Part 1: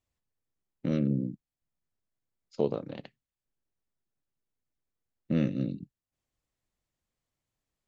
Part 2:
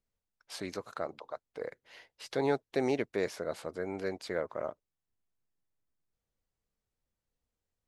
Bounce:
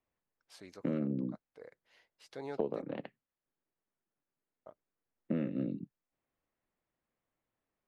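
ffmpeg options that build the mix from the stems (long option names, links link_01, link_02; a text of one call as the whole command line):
ffmpeg -i stem1.wav -i stem2.wav -filter_complex "[0:a]acrossover=split=180 2600:gain=0.224 1 0.0631[link_01][link_02][link_03];[link_01][link_02][link_03]amix=inputs=3:normalize=0,volume=3dB[link_04];[1:a]volume=-13dB,asplit=3[link_05][link_06][link_07];[link_05]atrim=end=2.82,asetpts=PTS-STARTPTS,afade=type=out:start_time=2.816:duration=0.004:curve=hsin[link_08];[link_06]atrim=start=2.82:end=4.66,asetpts=PTS-STARTPTS,volume=0[link_09];[link_07]atrim=start=4.66,asetpts=PTS-STARTPTS,afade=type=in:duration=0.004:curve=hsin[link_10];[link_08][link_09][link_10]concat=n=3:v=0:a=1[link_11];[link_04][link_11]amix=inputs=2:normalize=0,acompressor=threshold=-30dB:ratio=6" out.wav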